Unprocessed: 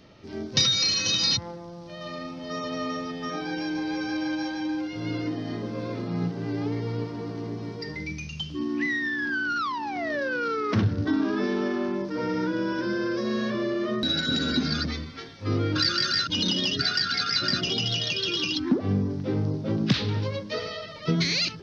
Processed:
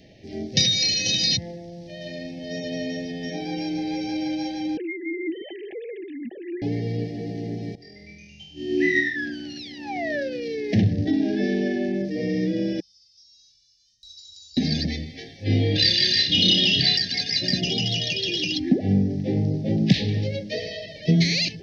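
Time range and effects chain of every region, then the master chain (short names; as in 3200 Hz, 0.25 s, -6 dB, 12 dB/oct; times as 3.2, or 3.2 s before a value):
4.77–6.62 sine-wave speech + low shelf 360 Hz -8 dB
7.75–9.16 notches 50/100/150/200 Hz + flutter echo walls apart 4.2 m, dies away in 1.1 s + upward expander 2.5:1, over -30 dBFS
12.8–14.57 inverse Chebyshev band-stop 290–1400 Hz, stop band 80 dB + three-band isolator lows -19 dB, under 250 Hz, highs -21 dB, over 6000 Hz + flutter echo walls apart 3.6 m, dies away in 0.27 s
15.44–16.97 EQ curve 1200 Hz 0 dB, 3600 Hz +7 dB, 5600 Hz -3 dB + flutter echo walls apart 5.2 m, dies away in 0.41 s
whole clip: Chebyshev band-stop 810–1700 Hz, order 5; dynamic EQ 180 Hz, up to +6 dB, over -43 dBFS, Q 3.1; gain +2.5 dB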